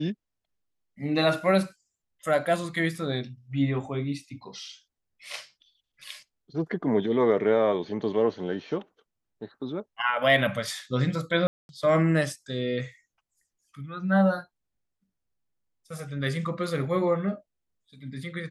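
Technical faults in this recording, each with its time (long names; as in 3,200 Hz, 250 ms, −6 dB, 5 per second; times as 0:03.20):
0:11.47–0:11.69: drop-out 221 ms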